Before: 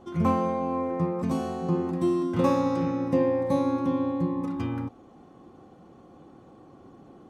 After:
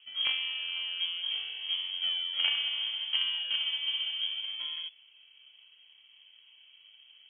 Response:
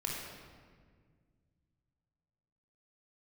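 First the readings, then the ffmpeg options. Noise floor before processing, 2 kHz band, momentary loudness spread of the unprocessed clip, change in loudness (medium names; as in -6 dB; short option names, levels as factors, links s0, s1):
-52 dBFS, +8.0 dB, 6 LU, -3.5 dB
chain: -filter_complex "[0:a]asplit=2[s0][s1];[s1]acrusher=samples=32:mix=1:aa=0.000001:lfo=1:lforange=32:lforate=0.7,volume=0.266[s2];[s0][s2]amix=inputs=2:normalize=0,aeval=exprs='0.335*(cos(1*acos(clip(val(0)/0.335,-1,1)))-cos(1*PI/2))+0.0944*(cos(3*acos(clip(val(0)/0.335,-1,1)))-cos(3*PI/2))+0.0266*(cos(5*acos(clip(val(0)/0.335,-1,1)))-cos(5*PI/2))+0.0075*(cos(6*acos(clip(val(0)/0.335,-1,1)))-cos(6*PI/2))':c=same,lowpass=f=2900:t=q:w=0.5098,lowpass=f=2900:t=q:w=0.6013,lowpass=f=2900:t=q:w=0.9,lowpass=f=2900:t=q:w=2.563,afreqshift=-3400,volume=0.668"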